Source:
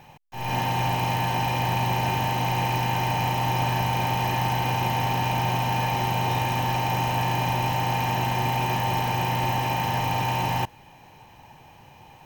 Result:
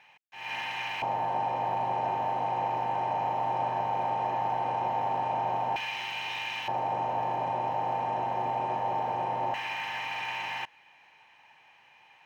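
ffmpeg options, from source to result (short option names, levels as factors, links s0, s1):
-af "asetnsamples=n=441:p=0,asendcmd='1.02 bandpass f 670;5.76 bandpass f 2600;6.68 bandpass f 630;9.54 bandpass f 2100',bandpass=f=2200:t=q:w=1.6:csg=0"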